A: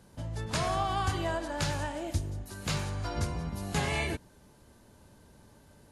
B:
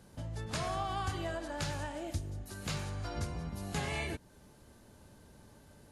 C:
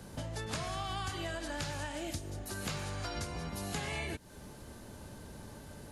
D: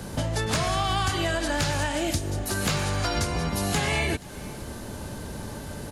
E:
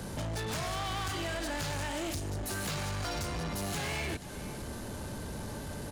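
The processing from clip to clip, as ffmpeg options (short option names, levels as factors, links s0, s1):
-filter_complex "[0:a]asplit=2[s0][s1];[s1]acompressor=threshold=0.00891:ratio=6,volume=1.41[s2];[s0][s2]amix=inputs=2:normalize=0,bandreject=f=970:w=20,volume=0.398"
-filter_complex "[0:a]acrossover=split=270|1700[s0][s1][s2];[s0]acompressor=threshold=0.00282:ratio=4[s3];[s1]acompressor=threshold=0.00251:ratio=4[s4];[s2]acompressor=threshold=0.00282:ratio=4[s5];[s3][s4][s5]amix=inputs=3:normalize=0,volume=2.82"
-filter_complex "[0:a]asplit=2[s0][s1];[s1]aeval=exprs='0.0299*(abs(mod(val(0)/0.0299+3,4)-2)-1)':c=same,volume=0.708[s2];[s0][s2]amix=inputs=2:normalize=0,aecho=1:1:476:0.0708,volume=2.51"
-af "asoftclip=type=tanh:threshold=0.0299,volume=0.794"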